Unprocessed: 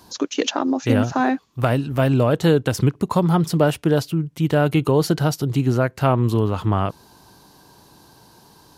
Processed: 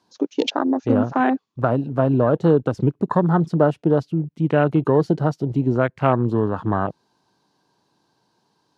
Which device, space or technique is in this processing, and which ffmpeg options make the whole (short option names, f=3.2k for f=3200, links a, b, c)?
over-cleaned archive recording: -af "highpass=140,lowpass=6.1k,afwtdn=0.0447,volume=1dB"